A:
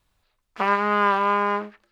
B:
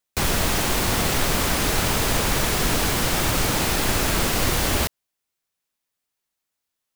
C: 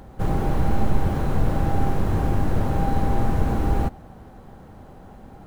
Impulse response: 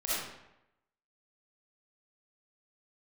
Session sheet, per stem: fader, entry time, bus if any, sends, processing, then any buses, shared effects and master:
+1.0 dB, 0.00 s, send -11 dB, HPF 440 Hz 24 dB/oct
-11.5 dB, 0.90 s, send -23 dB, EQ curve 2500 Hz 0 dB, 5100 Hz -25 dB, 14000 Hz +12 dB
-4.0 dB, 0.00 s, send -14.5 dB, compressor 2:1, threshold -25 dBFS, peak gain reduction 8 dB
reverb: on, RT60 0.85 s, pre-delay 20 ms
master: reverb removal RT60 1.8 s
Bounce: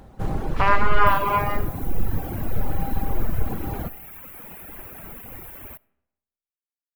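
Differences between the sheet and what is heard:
stem B -11.5 dB -> -18.0 dB; stem C: missing compressor 2:1, threshold -25 dBFS, peak gain reduction 8 dB

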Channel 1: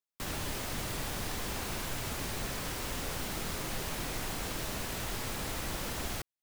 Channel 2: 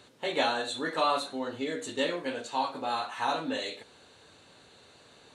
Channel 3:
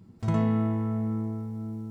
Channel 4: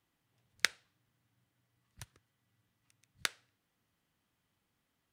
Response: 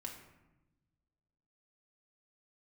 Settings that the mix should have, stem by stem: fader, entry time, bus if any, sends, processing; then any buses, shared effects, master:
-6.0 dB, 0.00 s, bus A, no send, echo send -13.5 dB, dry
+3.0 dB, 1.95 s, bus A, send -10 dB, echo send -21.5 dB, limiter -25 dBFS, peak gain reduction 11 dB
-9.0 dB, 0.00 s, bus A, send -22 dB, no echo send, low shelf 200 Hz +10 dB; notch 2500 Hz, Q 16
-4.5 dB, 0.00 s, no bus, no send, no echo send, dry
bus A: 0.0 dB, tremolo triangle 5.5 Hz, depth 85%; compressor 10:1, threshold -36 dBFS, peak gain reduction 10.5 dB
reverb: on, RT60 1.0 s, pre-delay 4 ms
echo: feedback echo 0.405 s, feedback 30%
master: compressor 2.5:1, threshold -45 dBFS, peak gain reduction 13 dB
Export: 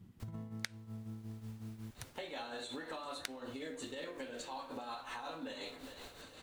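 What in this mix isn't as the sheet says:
stem 1 -6.0 dB -> -17.5 dB; stem 4 -4.5 dB -> +3.5 dB

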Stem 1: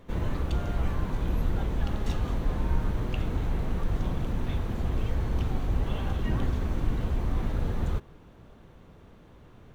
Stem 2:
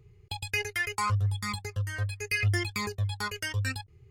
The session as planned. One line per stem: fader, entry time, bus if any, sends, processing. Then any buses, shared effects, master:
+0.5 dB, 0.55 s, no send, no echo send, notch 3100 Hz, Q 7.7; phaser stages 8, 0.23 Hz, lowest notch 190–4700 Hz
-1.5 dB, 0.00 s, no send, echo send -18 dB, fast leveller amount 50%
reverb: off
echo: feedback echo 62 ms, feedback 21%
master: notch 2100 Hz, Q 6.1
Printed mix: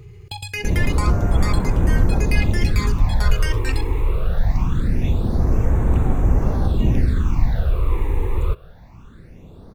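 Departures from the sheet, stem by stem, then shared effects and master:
stem 1 +0.5 dB -> +9.5 dB; master: missing notch 2100 Hz, Q 6.1

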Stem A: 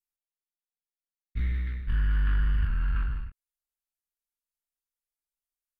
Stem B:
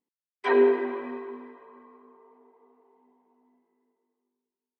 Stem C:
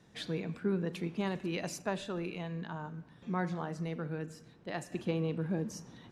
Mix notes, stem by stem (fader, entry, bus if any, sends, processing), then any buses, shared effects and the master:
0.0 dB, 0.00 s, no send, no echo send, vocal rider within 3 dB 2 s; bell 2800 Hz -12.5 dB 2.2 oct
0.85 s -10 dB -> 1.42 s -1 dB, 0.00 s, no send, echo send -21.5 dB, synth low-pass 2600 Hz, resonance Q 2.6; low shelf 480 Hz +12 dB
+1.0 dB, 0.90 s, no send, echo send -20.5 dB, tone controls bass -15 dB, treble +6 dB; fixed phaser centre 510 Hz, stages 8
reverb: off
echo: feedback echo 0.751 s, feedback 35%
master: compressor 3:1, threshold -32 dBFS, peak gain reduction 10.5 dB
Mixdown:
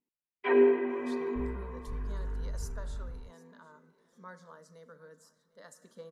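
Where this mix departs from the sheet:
stem A 0.0 dB -> -11.5 dB; stem C +1.0 dB -> -8.5 dB; master: missing compressor 3:1, threshold -32 dBFS, peak gain reduction 10.5 dB

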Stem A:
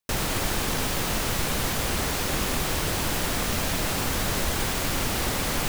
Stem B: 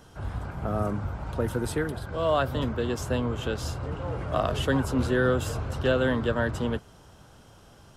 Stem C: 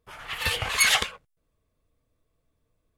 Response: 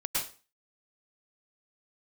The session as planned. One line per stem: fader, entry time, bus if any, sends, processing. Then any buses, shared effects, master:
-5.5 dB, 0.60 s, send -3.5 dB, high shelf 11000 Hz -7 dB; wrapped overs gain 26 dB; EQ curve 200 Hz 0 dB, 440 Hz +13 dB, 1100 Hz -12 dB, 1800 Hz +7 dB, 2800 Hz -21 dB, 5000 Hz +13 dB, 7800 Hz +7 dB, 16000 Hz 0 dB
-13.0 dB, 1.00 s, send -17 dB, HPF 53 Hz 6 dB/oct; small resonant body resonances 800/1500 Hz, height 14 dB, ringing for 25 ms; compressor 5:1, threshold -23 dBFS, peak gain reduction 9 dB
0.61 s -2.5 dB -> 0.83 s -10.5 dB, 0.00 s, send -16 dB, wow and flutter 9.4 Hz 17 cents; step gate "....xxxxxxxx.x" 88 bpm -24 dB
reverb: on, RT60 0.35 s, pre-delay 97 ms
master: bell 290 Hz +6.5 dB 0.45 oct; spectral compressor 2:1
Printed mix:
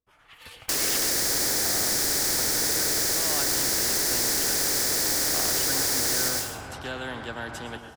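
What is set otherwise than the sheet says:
stem B: missing compressor 5:1, threshold -23 dBFS, peak gain reduction 9 dB; stem C -2.5 dB -> -10.0 dB

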